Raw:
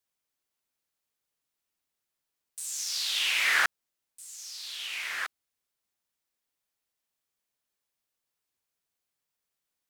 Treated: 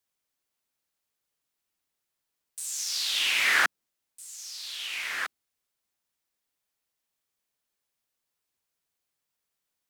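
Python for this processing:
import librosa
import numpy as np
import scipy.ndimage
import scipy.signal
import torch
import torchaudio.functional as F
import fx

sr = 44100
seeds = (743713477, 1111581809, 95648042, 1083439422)

y = fx.dynamic_eq(x, sr, hz=240.0, q=0.86, threshold_db=-55.0, ratio=4.0, max_db=7)
y = y * 10.0 ** (1.5 / 20.0)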